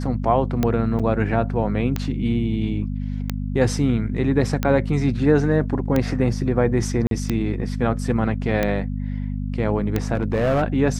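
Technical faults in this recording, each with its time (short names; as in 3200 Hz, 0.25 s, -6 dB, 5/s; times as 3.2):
hum 50 Hz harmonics 5 -26 dBFS
tick 45 rpm -8 dBFS
0.99–1 gap 6.4 ms
7.07–7.11 gap 42 ms
10.14–10.63 clipped -15.5 dBFS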